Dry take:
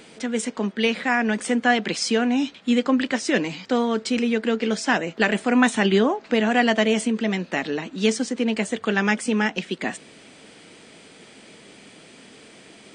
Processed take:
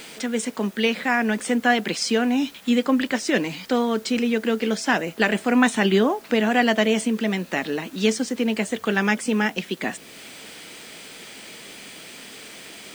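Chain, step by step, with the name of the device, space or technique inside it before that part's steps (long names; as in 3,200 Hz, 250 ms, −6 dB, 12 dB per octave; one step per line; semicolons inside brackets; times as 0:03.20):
noise-reduction cassette on a plain deck (one half of a high-frequency compander encoder only; tape wow and flutter 10 cents; white noise bed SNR 28 dB)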